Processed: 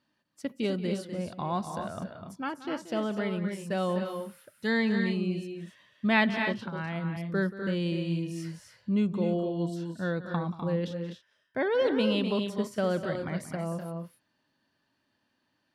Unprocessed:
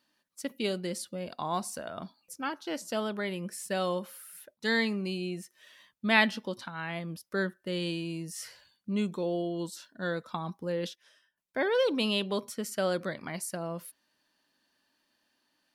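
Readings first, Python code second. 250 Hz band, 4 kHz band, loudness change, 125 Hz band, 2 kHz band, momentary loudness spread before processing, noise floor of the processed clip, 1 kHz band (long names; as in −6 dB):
+5.0 dB, −3.5 dB, +2.0 dB, +6.5 dB, −1.0 dB, 14 LU, −76 dBFS, +0.5 dB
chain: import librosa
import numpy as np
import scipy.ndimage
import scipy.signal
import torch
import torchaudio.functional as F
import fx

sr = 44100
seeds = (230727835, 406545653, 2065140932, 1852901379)

y = fx.lowpass(x, sr, hz=2500.0, slope=6)
y = fx.peak_eq(y, sr, hz=110.0, db=12.0, octaves=1.3)
y = fx.echo_multitap(y, sr, ms=(181, 251, 281), db=(-15.0, -8.0, -11.0))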